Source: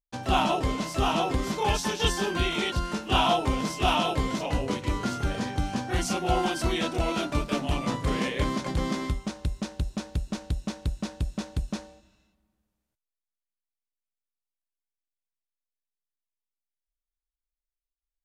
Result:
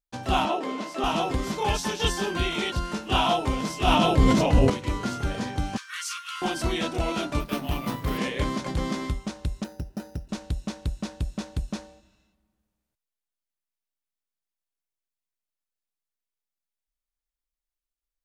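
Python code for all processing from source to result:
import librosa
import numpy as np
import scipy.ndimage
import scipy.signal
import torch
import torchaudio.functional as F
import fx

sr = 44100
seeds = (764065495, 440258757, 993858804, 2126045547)

y = fx.chain(x, sr, fx.steep_highpass(hz=220.0, slope=36),
    fx.high_shelf(hz=4900.0, db=-11.0), at=(0.45, 1.04))
y = fx.chain(y, sr, fx.low_shelf(hz=400.0, db=8.5),
    fx.sustainer(db_per_s=30.0), at=(3.87, 4.7))
y = fx.chain(y, sr, fx.steep_highpass(hz=1100.0, slope=96),
    fx.quant_companded(bits=8), at=(5.77, 6.42))
y = fx.chain(y, sr, fx.law_mismatch(coded='A'),
    fx.peak_eq(hz=520.0, db=-3.5, octaves=0.42),
    fx.resample_bad(factor=3, down='filtered', up='hold'), at=(7.4, 8.18))
y = fx.chain(y, sr, fx.air_absorb(metres=270.0),
    fx.notch_comb(f0_hz=1100.0),
    fx.resample_bad(factor=8, down='filtered', up='hold'), at=(9.64, 10.29))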